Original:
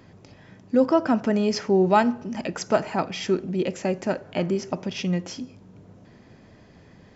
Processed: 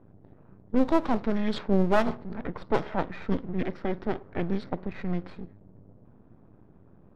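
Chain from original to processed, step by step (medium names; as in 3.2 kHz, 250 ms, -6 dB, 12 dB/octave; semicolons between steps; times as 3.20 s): formant shift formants -5 st; half-wave rectifier; level-controlled noise filter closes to 780 Hz, open at -17 dBFS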